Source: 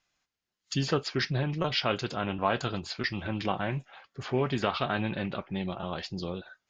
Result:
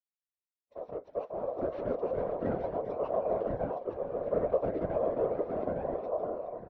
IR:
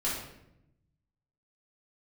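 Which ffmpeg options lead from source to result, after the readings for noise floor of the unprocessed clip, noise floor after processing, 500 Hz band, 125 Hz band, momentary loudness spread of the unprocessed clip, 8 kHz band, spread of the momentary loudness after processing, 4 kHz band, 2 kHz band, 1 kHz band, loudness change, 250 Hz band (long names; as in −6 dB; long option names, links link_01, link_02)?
below −85 dBFS, below −85 dBFS, +3.5 dB, −12.0 dB, 7 LU, can't be measured, 8 LU, below −30 dB, −19.0 dB, −4.5 dB, −2.0 dB, −6.5 dB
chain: -af "aeval=exprs='0.075*(abs(mod(val(0)/0.075+3,4)-2)-1)':channel_layout=same,aecho=1:1:412|668|698|862:0.316|0.237|0.224|0.531,dynaudnorm=framelen=400:gausssize=7:maxgain=11.5dB,lowshelf=frequency=350:gain=-5,flanger=delay=0.5:depth=3.7:regen=38:speed=0.32:shape=sinusoidal,acrusher=bits=10:mix=0:aa=0.000001,highpass=110,aeval=exprs='val(0)*sin(2*PI*830*n/s)':channel_layout=same,lowpass=frequency=550:width_type=q:width=4.9,afftfilt=real='hypot(re,im)*cos(2*PI*random(0))':imag='hypot(re,im)*sin(2*PI*random(1))':win_size=512:overlap=0.75"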